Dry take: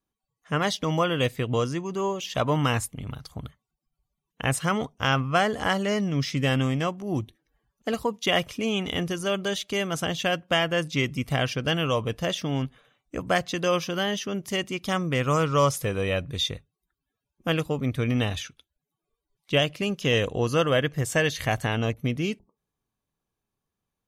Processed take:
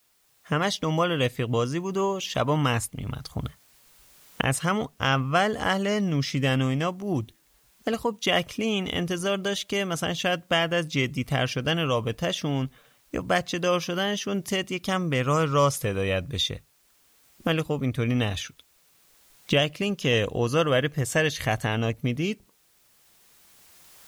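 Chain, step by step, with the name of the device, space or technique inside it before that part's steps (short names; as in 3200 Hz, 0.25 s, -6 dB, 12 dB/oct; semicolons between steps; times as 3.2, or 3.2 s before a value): cheap recorder with automatic gain (white noise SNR 40 dB; recorder AGC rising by 8.9 dB/s)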